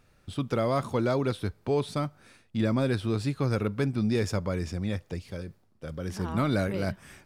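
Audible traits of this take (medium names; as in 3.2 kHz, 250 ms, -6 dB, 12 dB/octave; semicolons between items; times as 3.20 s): noise floor -64 dBFS; spectral tilt -6.5 dB/octave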